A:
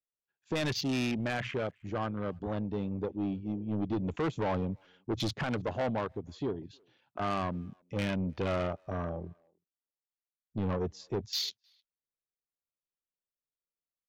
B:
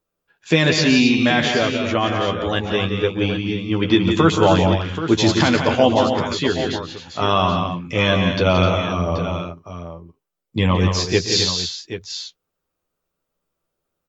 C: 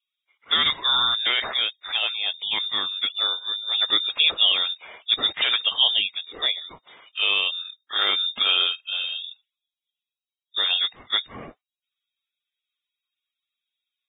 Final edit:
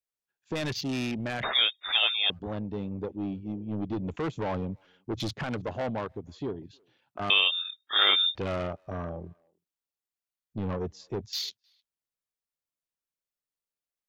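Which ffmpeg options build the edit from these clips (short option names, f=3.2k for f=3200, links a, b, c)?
-filter_complex "[2:a]asplit=2[a][b];[0:a]asplit=3[c][d][e];[c]atrim=end=1.432[f];[a]atrim=start=1.428:end=2.302[g];[d]atrim=start=2.298:end=7.302[h];[b]atrim=start=7.298:end=8.352[i];[e]atrim=start=8.348[j];[f][g]acrossfade=d=0.004:c1=hsin:c2=hsin[k];[k][h]acrossfade=d=0.004:c1=hsin:c2=hsin[l];[l][i]acrossfade=d=0.004:c1=hsin:c2=hsin[m];[m][j]acrossfade=d=0.004:c1=hsin:c2=hsin"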